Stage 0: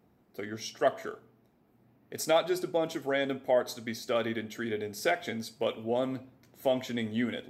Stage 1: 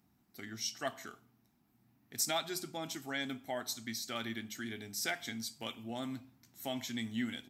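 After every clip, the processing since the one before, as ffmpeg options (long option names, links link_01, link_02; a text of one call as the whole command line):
ffmpeg -i in.wav -af "firequalizer=gain_entry='entry(270,0);entry(480,-16);entry(780,-2);entry(5500,9)':delay=0.05:min_phase=1,volume=-5.5dB" out.wav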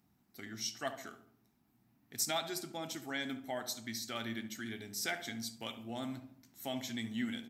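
ffmpeg -i in.wav -filter_complex "[0:a]asplit=2[link_01][link_02];[link_02]adelay=70,lowpass=frequency=1300:poles=1,volume=-9.5dB,asplit=2[link_03][link_04];[link_04]adelay=70,lowpass=frequency=1300:poles=1,volume=0.54,asplit=2[link_05][link_06];[link_06]adelay=70,lowpass=frequency=1300:poles=1,volume=0.54,asplit=2[link_07][link_08];[link_08]adelay=70,lowpass=frequency=1300:poles=1,volume=0.54,asplit=2[link_09][link_10];[link_10]adelay=70,lowpass=frequency=1300:poles=1,volume=0.54,asplit=2[link_11][link_12];[link_12]adelay=70,lowpass=frequency=1300:poles=1,volume=0.54[link_13];[link_01][link_03][link_05][link_07][link_09][link_11][link_13]amix=inputs=7:normalize=0,volume=-1dB" out.wav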